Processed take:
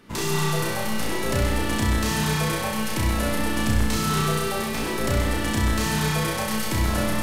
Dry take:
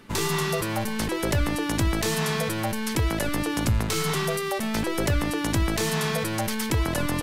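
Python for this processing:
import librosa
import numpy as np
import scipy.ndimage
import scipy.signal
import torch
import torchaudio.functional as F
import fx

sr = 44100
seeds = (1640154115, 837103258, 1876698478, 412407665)

y = fx.room_flutter(x, sr, wall_m=5.6, rt60_s=0.79)
y = fx.echo_crushed(y, sr, ms=126, feedback_pct=80, bits=8, wet_db=-7.5)
y = y * 10.0 ** (-3.5 / 20.0)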